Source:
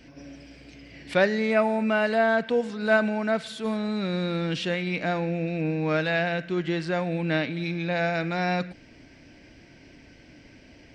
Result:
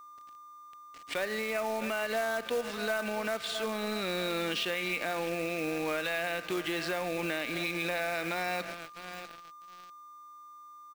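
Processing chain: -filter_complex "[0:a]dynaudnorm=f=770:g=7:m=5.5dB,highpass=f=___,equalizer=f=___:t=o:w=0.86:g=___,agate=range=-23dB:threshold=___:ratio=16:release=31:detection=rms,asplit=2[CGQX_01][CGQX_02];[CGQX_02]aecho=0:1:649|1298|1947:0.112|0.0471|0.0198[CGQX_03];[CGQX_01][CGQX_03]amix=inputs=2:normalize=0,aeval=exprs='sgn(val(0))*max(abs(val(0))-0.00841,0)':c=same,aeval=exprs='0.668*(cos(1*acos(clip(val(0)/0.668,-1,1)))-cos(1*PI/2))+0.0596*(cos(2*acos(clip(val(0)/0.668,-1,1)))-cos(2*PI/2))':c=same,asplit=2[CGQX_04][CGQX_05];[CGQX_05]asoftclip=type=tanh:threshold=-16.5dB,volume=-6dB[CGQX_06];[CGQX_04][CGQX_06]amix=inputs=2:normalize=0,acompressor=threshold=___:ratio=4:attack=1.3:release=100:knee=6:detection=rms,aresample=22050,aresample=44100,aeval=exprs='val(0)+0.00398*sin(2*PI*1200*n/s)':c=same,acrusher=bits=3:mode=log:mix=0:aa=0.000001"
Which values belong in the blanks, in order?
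350, 2800, 4.5, -47dB, -29dB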